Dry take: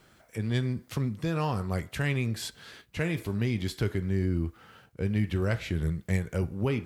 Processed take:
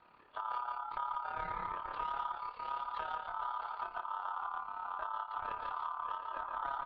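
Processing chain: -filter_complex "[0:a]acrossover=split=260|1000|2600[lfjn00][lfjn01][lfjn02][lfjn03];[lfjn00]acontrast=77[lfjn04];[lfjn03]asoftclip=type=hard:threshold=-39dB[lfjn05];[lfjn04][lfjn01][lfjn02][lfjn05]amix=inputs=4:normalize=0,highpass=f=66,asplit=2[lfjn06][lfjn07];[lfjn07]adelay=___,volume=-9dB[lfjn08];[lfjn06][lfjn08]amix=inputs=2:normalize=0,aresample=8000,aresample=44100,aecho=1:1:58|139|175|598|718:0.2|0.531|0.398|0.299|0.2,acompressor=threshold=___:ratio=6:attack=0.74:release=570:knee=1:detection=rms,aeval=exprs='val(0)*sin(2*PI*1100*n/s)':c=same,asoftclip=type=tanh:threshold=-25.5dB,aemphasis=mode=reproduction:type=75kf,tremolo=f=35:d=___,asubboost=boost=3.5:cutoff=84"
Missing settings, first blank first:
15, -25dB, 0.621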